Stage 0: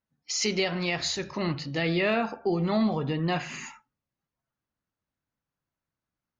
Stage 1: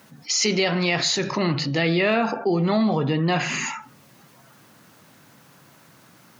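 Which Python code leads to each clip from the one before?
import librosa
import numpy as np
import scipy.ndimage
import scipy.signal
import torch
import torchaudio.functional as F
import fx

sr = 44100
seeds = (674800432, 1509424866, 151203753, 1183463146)

y = scipy.signal.sosfilt(scipy.signal.butter(4, 120.0, 'highpass', fs=sr, output='sos'), x)
y = fx.env_flatten(y, sr, amount_pct=50)
y = y * librosa.db_to_amplitude(3.5)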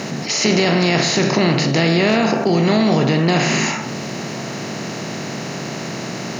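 y = fx.bin_compress(x, sr, power=0.4)
y = fx.low_shelf(y, sr, hz=370.0, db=5.5)
y = y * librosa.db_to_amplitude(-1.5)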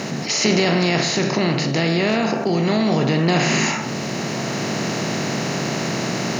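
y = fx.rider(x, sr, range_db=5, speed_s=2.0)
y = y * librosa.db_to_amplitude(-1.5)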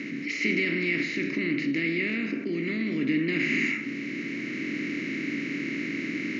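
y = fx.double_bandpass(x, sr, hz=790.0, octaves=2.9)
y = y * librosa.db_to_amplitude(2.5)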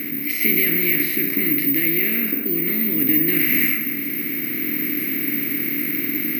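y = (np.kron(scipy.signal.resample_poly(x, 1, 3), np.eye(3)[0]) * 3)[:len(x)]
y = y + 10.0 ** (-10.5 / 20.0) * np.pad(y, (int(187 * sr / 1000.0), 0))[:len(y)]
y = y * librosa.db_to_amplitude(3.0)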